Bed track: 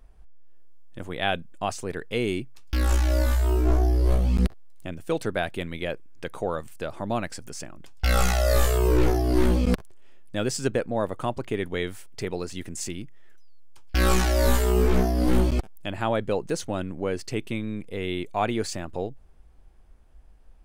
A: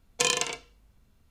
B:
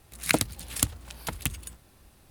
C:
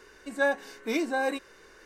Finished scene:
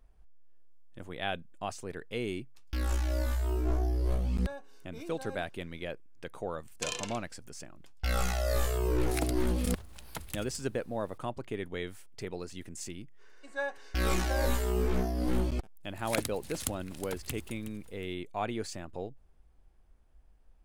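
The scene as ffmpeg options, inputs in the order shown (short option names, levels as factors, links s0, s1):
-filter_complex "[3:a]asplit=2[s0][s1];[2:a]asplit=2[s2][s3];[0:a]volume=0.376[s4];[s0]equalizer=f=1900:t=o:w=0.31:g=-12.5[s5];[s2]alimiter=level_in=3.35:limit=0.891:release=50:level=0:latency=1[s6];[s1]highpass=400,lowpass=7700[s7];[s3]aecho=1:1:367|734|1101:0.224|0.0582|0.0151[s8];[s5]atrim=end=1.85,asetpts=PTS-STARTPTS,volume=0.141,afade=t=in:d=0.004:c=hsin,afade=t=out:st=1.846:d=0.004:c=hsin,adelay=4060[s9];[1:a]atrim=end=1.3,asetpts=PTS-STARTPTS,volume=0.282,afade=t=in:d=0.004:c=hsin,afade=t=out:st=1.296:d=0.004:c=hsin,adelay=6620[s10];[s6]atrim=end=2.3,asetpts=PTS-STARTPTS,volume=0.133,afade=t=in:d=0.004:c=hsin,afade=t=out:st=2.296:d=0.004:c=hsin,adelay=8880[s11];[s7]atrim=end=1.85,asetpts=PTS-STARTPTS,volume=0.376,afade=t=in:d=0.05,afade=t=out:st=1.8:d=0.05,adelay=13170[s12];[s8]atrim=end=2.3,asetpts=PTS-STARTPTS,volume=0.335,afade=t=in:d=0.004:c=hsin,afade=t=out:st=2.296:d=0.004:c=hsin,adelay=15840[s13];[s4][s9][s10][s11][s12][s13]amix=inputs=6:normalize=0"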